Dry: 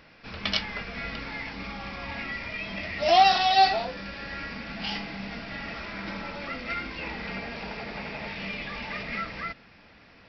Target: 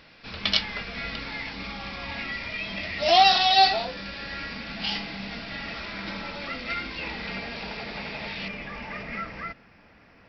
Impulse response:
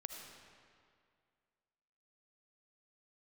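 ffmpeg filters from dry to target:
-af "asetnsamples=nb_out_samples=441:pad=0,asendcmd='8.48 equalizer g -8',equalizer=frequency=3900:width_type=o:width=0.96:gain=6.5"

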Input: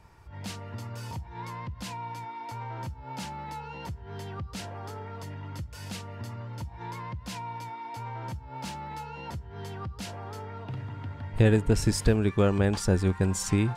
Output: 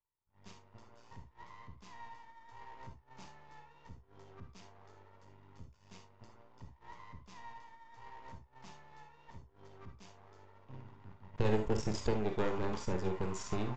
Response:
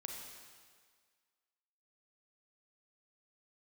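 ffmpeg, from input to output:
-filter_complex "[0:a]bandreject=frequency=4100:width=9.1,agate=range=-33dB:threshold=-30dB:ratio=3:detection=peak,equalizer=frequency=400:width_type=o:width=0.33:gain=6,equalizer=frequency=1000:width_type=o:width=0.33:gain=9,equalizer=frequency=1600:width_type=o:width=0.33:gain=-4,aeval=exprs='max(val(0),0)':channel_layout=same,aresample=16000,aresample=44100[link_01];[1:a]atrim=start_sample=2205,atrim=end_sample=3528[link_02];[link_01][link_02]afir=irnorm=-1:irlink=0,volume=-2.5dB"

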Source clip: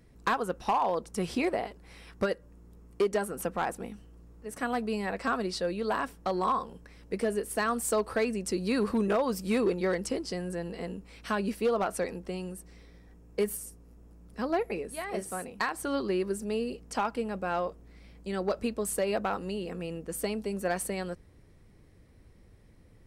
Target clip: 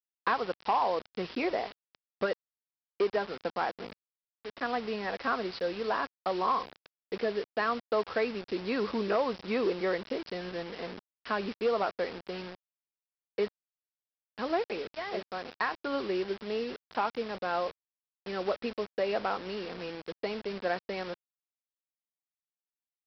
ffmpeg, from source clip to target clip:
ffmpeg -i in.wav -af "bass=frequency=250:gain=-8,treble=frequency=4000:gain=-10,aresample=11025,acrusher=bits=6:mix=0:aa=0.000001,aresample=44100,lowshelf=frequency=95:gain=-7.5" out.wav

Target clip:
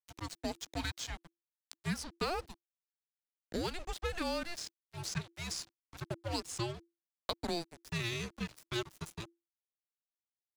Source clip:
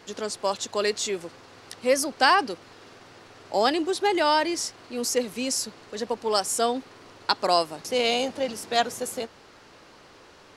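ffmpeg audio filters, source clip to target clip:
ffmpeg -i in.wav -filter_complex "[0:a]highpass=160,aeval=exprs='sgn(val(0))*max(abs(val(0))-0.0266,0)':channel_layout=same,acrossover=split=510|7700[link_01][link_02][link_03];[link_01]acompressor=threshold=-40dB:ratio=4[link_04];[link_02]acompressor=threshold=-30dB:ratio=4[link_05];[link_03]acompressor=threshold=-49dB:ratio=4[link_06];[link_04][link_05][link_06]amix=inputs=3:normalize=0,afreqshift=-340,volume=-5dB" out.wav

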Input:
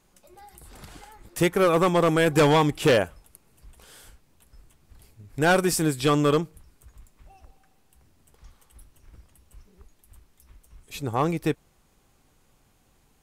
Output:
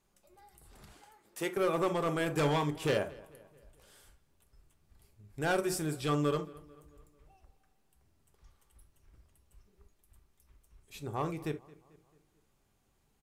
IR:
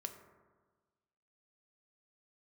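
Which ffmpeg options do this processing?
-filter_complex "[0:a]asettb=1/sr,asplit=3[link_01][link_02][link_03];[link_01]atrim=end=0.924[link_04];[link_02]atrim=start=0.92:end=1.57,asetpts=PTS-STARTPTS,afade=type=in:duration=0.004:curve=qsin,afade=type=out:start_time=0.646:duration=0.004:curve=qsin,highpass=290[link_05];[link_03]atrim=start=1.566[link_06];[link_04][link_05]acrossfade=duration=0.004:curve1=hsin:curve2=qsin[link_07];[link_07][link_06]acrossfade=duration=0.004:curve1=qsin:curve2=hsin,asplit=2[link_08][link_09];[link_09]adelay=221,lowpass=frequency=3600:poles=1,volume=-21dB,asplit=2[link_10][link_11];[link_11]adelay=221,lowpass=frequency=3600:poles=1,volume=0.51,asplit=2[link_12][link_13];[link_13]adelay=221,lowpass=frequency=3600:poles=1,volume=0.51,asplit=2[link_14][link_15];[link_15]adelay=221,lowpass=frequency=3600:poles=1,volume=0.51[link_16];[link_08][link_10][link_12][link_14][link_16]amix=inputs=5:normalize=0[link_17];[1:a]atrim=start_sample=2205,atrim=end_sample=3528[link_18];[link_17][link_18]afir=irnorm=-1:irlink=0,volume=-7.5dB"

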